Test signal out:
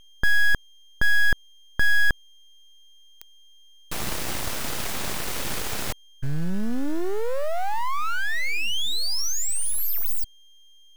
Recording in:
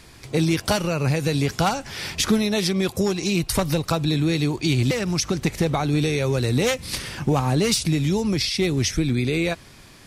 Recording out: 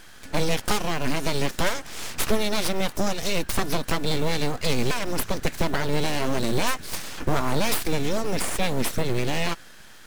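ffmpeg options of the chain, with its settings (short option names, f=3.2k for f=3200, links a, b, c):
-af "aeval=exprs='val(0)+0.00447*sin(2*PI*1600*n/s)':c=same,aeval=exprs='abs(val(0))':c=same,acrusher=bits=7:mode=log:mix=0:aa=0.000001"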